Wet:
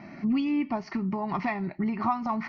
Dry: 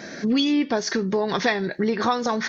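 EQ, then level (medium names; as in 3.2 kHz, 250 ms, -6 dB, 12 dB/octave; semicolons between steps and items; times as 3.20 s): distance through air 470 m; static phaser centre 2.4 kHz, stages 8; 0.0 dB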